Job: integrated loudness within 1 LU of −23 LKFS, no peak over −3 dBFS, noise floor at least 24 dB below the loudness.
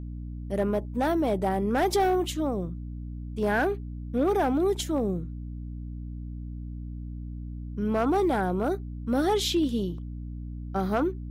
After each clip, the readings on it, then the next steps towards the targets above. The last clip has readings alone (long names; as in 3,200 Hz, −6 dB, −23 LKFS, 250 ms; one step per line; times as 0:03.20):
share of clipped samples 0.6%; peaks flattened at −17.5 dBFS; mains hum 60 Hz; hum harmonics up to 300 Hz; level of the hum −34 dBFS; integrated loudness −27.5 LKFS; sample peak −17.5 dBFS; target loudness −23.0 LKFS
→ clipped peaks rebuilt −17.5 dBFS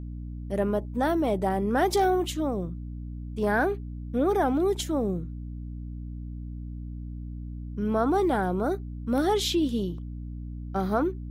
share of clipped samples 0.0%; mains hum 60 Hz; hum harmonics up to 300 Hz; level of the hum −34 dBFS
→ hum removal 60 Hz, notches 5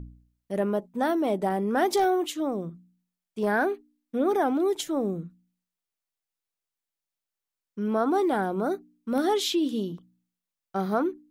mains hum none found; integrated loudness −27.0 LKFS; sample peak −12.0 dBFS; target loudness −23.0 LKFS
→ level +4 dB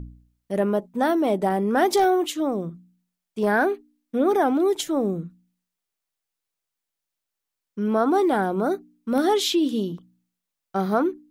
integrated loudness −23.0 LKFS; sample peak −8.0 dBFS; background noise floor −85 dBFS